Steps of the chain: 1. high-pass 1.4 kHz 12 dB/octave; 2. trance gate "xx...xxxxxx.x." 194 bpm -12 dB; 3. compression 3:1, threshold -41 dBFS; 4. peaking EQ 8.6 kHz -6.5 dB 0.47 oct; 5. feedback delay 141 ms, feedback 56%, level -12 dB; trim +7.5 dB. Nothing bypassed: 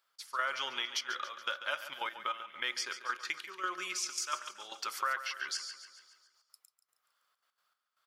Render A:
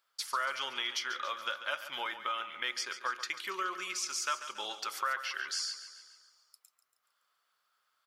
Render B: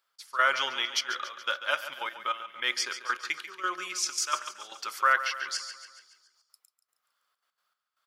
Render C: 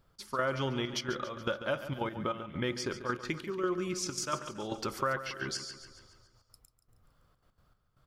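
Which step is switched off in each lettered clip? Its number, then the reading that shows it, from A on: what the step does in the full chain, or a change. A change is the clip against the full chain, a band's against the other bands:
2, crest factor change -1.5 dB; 3, mean gain reduction 4.0 dB; 1, 250 Hz band +21.5 dB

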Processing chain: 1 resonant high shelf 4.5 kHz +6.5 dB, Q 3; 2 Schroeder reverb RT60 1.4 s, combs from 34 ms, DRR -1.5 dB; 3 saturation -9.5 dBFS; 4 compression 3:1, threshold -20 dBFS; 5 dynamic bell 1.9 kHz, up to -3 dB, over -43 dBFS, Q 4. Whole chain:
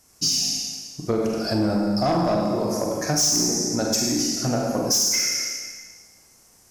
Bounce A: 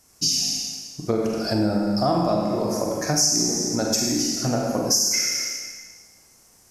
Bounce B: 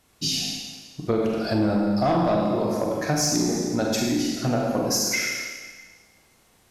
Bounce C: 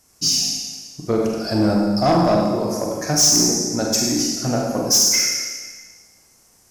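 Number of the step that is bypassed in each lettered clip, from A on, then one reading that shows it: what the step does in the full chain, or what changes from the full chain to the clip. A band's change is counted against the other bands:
3, distortion -13 dB; 1, loudness change -2.0 LU; 4, loudness change +4.0 LU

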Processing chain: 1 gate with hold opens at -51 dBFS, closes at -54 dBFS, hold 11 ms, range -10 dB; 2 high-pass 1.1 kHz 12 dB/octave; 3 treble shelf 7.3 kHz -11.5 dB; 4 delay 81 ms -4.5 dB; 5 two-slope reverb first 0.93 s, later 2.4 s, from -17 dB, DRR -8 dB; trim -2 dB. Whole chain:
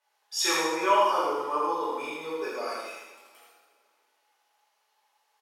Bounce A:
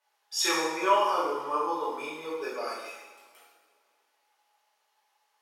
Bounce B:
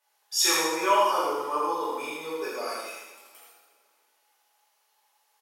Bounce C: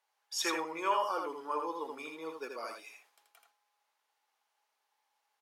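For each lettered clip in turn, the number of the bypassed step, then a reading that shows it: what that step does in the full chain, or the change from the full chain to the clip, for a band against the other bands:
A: 4, loudness change -1.5 LU; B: 3, 8 kHz band +5.0 dB; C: 5, echo-to-direct 9.5 dB to -4.5 dB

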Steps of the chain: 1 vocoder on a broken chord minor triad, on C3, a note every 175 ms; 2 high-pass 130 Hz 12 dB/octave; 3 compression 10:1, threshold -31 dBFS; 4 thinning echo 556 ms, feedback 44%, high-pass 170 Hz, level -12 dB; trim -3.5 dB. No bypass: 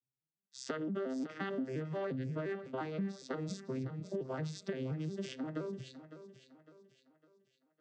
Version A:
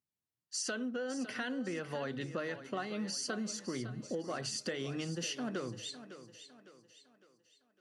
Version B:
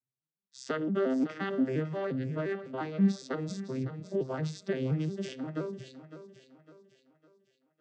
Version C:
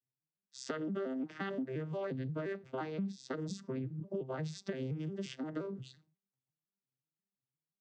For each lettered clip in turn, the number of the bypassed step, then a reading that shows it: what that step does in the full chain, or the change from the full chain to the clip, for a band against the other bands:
1, 8 kHz band +13.5 dB; 3, mean gain reduction 4.5 dB; 4, echo-to-direct -11.0 dB to none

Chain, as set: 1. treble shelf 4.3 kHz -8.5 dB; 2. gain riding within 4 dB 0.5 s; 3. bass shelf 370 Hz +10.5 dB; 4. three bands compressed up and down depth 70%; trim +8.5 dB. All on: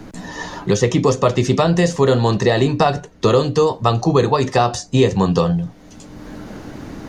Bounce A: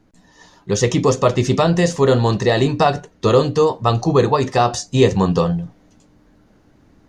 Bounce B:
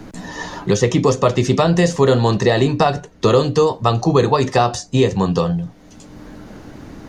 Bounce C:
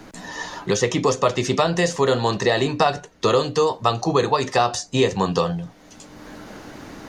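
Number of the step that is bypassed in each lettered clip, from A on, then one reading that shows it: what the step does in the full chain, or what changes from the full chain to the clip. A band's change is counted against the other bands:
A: 4, momentary loudness spread change -13 LU; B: 2, momentary loudness spread change -9 LU; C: 3, 125 Hz band -8.0 dB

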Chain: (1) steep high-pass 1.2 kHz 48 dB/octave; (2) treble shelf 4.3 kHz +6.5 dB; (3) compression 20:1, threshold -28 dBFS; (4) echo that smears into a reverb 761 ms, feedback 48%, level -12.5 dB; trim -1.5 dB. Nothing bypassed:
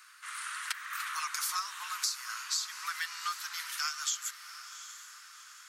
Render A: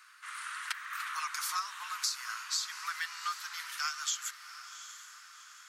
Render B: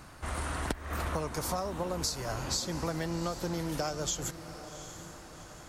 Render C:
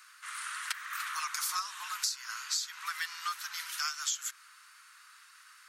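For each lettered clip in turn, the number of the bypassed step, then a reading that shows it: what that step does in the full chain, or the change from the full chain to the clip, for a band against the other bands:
2, 8 kHz band -2.0 dB; 1, 1 kHz band +3.5 dB; 4, echo-to-direct -11.5 dB to none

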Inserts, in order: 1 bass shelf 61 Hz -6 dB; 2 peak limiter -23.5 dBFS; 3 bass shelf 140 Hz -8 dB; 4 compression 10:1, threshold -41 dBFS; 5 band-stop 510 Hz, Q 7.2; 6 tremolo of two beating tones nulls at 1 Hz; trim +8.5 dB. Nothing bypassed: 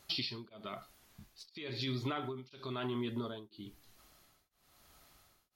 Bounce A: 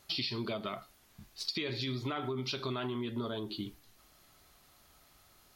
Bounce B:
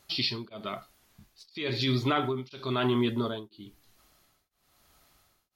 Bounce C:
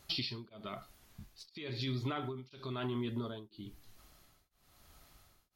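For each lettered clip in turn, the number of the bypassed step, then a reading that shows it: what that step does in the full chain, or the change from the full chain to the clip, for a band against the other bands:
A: 6, momentary loudness spread change -10 LU; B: 4, mean gain reduction 7.5 dB; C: 3, 125 Hz band +3.0 dB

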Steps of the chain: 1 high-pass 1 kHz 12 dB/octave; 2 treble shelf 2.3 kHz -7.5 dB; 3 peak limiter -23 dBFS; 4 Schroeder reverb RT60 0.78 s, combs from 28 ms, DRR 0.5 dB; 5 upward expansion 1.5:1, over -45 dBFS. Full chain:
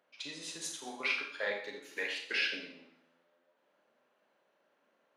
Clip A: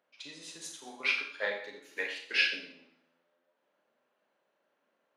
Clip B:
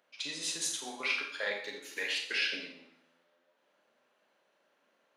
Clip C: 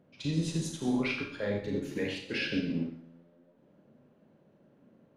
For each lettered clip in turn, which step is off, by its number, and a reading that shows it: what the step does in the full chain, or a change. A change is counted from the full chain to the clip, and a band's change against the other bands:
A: 3, crest factor change +2.5 dB; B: 2, 8 kHz band +6.5 dB; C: 1, 250 Hz band +20.5 dB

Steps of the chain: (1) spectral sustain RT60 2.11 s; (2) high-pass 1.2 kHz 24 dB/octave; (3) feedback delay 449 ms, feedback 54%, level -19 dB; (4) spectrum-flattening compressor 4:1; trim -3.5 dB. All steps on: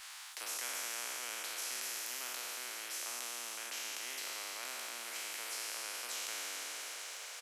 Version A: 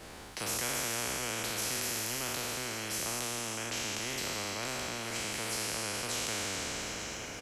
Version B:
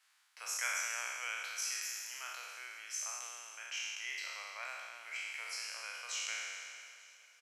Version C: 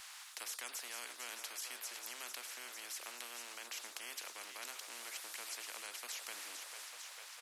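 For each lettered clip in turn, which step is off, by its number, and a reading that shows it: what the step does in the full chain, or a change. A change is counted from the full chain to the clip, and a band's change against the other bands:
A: 2, 250 Hz band +14.0 dB; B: 4, 500 Hz band -5.0 dB; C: 1, loudness change -5.0 LU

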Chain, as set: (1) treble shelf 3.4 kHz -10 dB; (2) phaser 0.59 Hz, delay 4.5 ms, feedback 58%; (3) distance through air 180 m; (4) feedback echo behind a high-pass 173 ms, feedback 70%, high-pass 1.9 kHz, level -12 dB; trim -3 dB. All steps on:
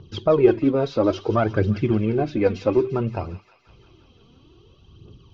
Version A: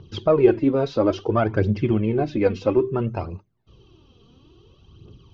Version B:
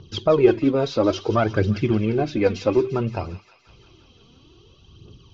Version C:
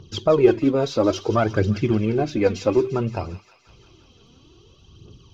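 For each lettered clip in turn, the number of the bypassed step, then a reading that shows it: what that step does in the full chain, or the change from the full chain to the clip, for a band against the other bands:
4, echo-to-direct -13.5 dB to none; 1, 4 kHz band +5.0 dB; 3, 4 kHz band +4.5 dB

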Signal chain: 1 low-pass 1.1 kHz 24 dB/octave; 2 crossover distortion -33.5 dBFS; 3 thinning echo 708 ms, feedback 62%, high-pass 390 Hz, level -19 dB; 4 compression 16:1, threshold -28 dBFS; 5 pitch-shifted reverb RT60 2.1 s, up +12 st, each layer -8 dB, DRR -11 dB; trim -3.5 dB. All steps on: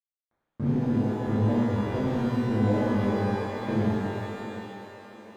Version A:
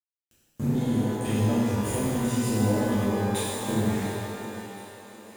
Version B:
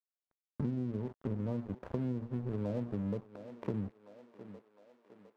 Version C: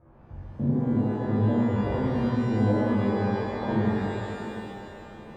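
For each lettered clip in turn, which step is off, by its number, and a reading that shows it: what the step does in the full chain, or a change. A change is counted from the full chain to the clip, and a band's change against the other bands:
1, 4 kHz band +7.5 dB; 5, 2 kHz band -9.0 dB; 2, distortion -17 dB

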